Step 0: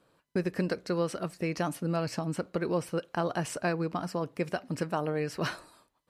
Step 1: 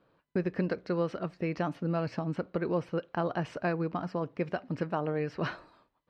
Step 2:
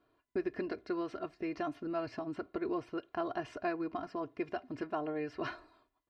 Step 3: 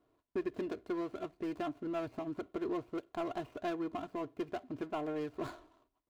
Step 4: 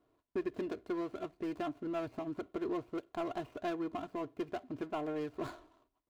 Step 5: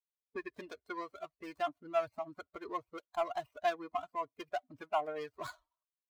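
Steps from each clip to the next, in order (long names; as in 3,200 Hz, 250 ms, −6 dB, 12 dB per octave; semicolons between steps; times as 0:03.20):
high-frequency loss of the air 240 metres
comb filter 2.9 ms, depth 83%; level −6.5 dB
running median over 25 samples; in parallel at −6 dB: gain into a clipping stage and back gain 35.5 dB; on the sum: level −3 dB
no processing that can be heard
spectral dynamics exaggerated over time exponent 2; low shelf with overshoot 490 Hz −13 dB, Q 1.5; level +8.5 dB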